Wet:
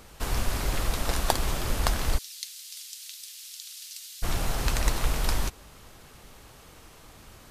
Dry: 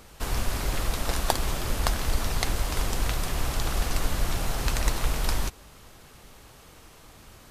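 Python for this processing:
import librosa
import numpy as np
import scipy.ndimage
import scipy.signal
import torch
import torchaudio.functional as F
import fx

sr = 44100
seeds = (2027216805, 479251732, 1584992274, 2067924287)

y = fx.ladder_highpass(x, sr, hz=3000.0, resonance_pct=20, at=(2.17, 4.22), fade=0.02)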